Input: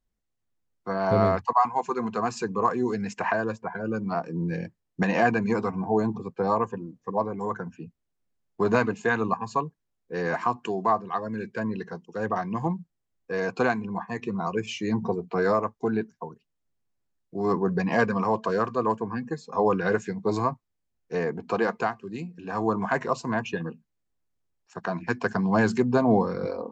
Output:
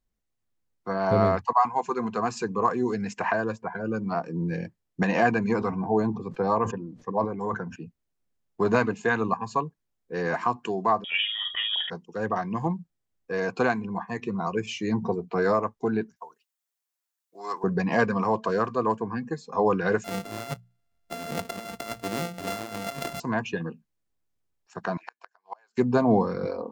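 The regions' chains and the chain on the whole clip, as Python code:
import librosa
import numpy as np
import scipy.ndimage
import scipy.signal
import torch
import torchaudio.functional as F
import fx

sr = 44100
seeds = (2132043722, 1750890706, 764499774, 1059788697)

y = fx.chain(x, sr, fx.lowpass(hz=6500.0, slope=12),
    fx.sustainer(db_per_s=120.0), at=(5.49, 7.76))
y = fx.chain(y, sr, fx.transient(attack_db=1, sustain_db=11),
    fx.doubler(ms=48.0, db=-8),
    fx.freq_invert(carrier_hz=3500), at=(11.04, 11.9))
y = fx.chain(y, sr, fx.highpass(hz=910.0, slope=12),
    fx.high_shelf(hz=6700.0, db=11.0), at=(16.16, 17.64))
y = fx.chain(y, sr, fx.sample_sort(block=64),
    fx.hum_notches(base_hz=60, count=3),
    fx.over_compress(threshold_db=-34.0, ratio=-1.0), at=(20.04, 23.2))
y = fx.chain(y, sr, fx.highpass(hz=640.0, slope=24),
    fx.gate_flip(shuts_db=-23.0, range_db=-36), at=(24.97, 25.78))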